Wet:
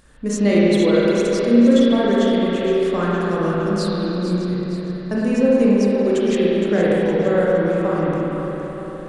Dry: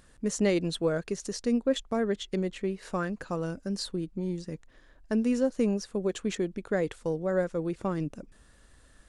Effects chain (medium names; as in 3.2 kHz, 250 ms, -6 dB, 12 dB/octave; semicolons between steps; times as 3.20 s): two-band feedback delay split 370 Hz, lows 291 ms, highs 464 ms, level -10 dB; spring tank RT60 3.2 s, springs 34/55 ms, chirp 20 ms, DRR -7 dB; trim +4 dB